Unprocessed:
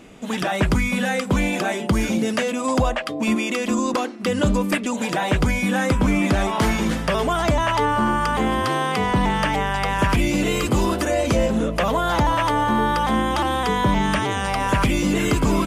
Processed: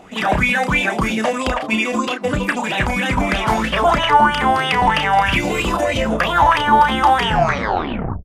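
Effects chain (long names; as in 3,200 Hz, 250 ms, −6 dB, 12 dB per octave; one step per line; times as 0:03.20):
turntable brake at the end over 2.03 s
tempo change 1.9×
double-tracking delay 32 ms −6 dB
auto-filter bell 3.1 Hz 730–3,100 Hz +16 dB
level −1.5 dB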